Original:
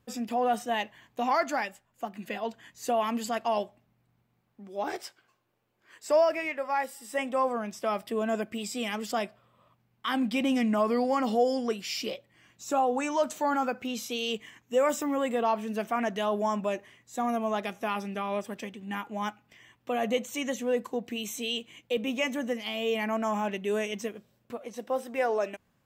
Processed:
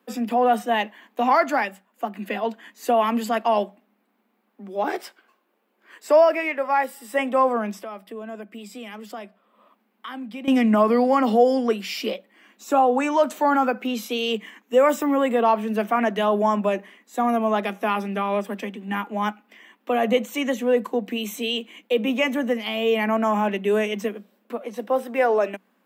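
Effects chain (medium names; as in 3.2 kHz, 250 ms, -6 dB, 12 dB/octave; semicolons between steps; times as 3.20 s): Chebyshev high-pass 190 Hz, order 10; peaking EQ 6.4 kHz -8.5 dB 1.3 oct; 7.81–10.48 s: compression 2:1, threshold -53 dBFS, peak gain reduction 15.5 dB; trim +8.5 dB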